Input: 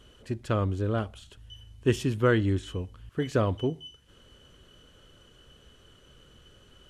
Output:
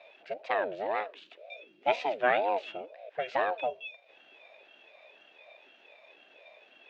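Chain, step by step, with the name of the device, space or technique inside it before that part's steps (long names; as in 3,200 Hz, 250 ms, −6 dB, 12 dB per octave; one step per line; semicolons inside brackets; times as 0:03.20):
voice changer toy (ring modulator whose carrier an LFO sweeps 440 Hz, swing 45%, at 2 Hz; loudspeaker in its box 570–4,400 Hz, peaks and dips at 620 Hz +8 dB, 1,100 Hz −4 dB, 1,600 Hz +5 dB, 2,500 Hz +9 dB)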